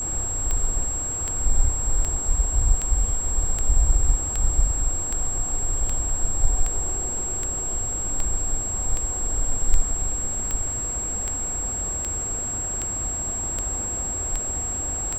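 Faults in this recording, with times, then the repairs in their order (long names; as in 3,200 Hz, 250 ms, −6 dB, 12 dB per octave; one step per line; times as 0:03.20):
scratch tick 78 rpm −13 dBFS
whistle 7,600 Hz −26 dBFS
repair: click removal
notch filter 7,600 Hz, Q 30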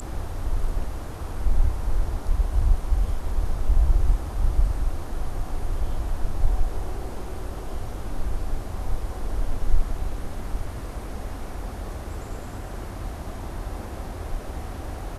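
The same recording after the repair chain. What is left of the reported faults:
none of them is left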